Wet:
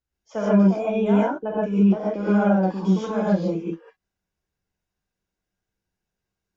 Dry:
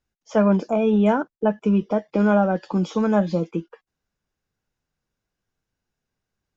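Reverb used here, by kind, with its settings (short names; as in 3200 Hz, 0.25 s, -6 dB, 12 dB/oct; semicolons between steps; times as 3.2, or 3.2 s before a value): non-linear reverb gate 0.17 s rising, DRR -7 dB; gain -9.5 dB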